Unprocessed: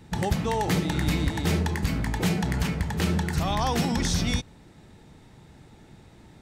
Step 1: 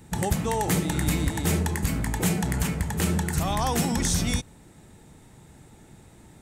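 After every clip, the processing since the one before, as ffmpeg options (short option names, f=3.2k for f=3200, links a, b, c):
-af "highshelf=f=6.3k:t=q:w=1.5:g=8"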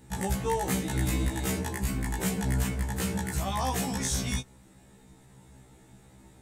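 -af "acontrast=34,afftfilt=real='re*1.73*eq(mod(b,3),0)':imag='im*1.73*eq(mod(b,3),0)':win_size=2048:overlap=0.75,volume=-7dB"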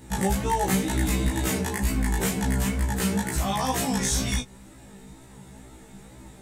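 -filter_complex "[0:a]asplit=2[a][b];[b]acompressor=threshold=-35dB:ratio=6,volume=2dB[c];[a][c]amix=inputs=2:normalize=0,flanger=delay=18.5:depth=2.2:speed=2.1,volume=4.5dB"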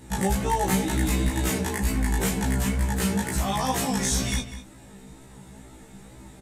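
-filter_complex "[0:a]asplit=2[a][b];[b]adelay=198.3,volume=-12dB,highshelf=f=4k:g=-4.46[c];[a][c]amix=inputs=2:normalize=0,aresample=32000,aresample=44100"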